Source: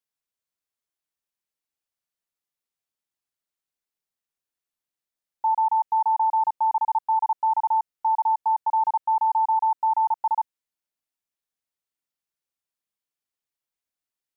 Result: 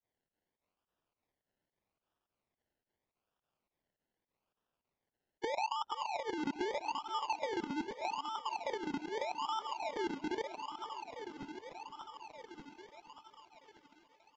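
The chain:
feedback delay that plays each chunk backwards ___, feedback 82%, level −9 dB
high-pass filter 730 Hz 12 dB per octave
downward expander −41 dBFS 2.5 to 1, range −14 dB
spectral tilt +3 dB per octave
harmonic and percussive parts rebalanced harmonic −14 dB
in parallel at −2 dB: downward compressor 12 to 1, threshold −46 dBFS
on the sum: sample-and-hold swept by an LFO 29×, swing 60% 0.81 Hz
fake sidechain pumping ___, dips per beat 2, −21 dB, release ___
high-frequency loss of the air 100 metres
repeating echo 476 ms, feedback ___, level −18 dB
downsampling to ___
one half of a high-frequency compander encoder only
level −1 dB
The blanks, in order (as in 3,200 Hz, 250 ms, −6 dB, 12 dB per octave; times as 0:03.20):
293 ms, 106 BPM, 81 ms, 55%, 16,000 Hz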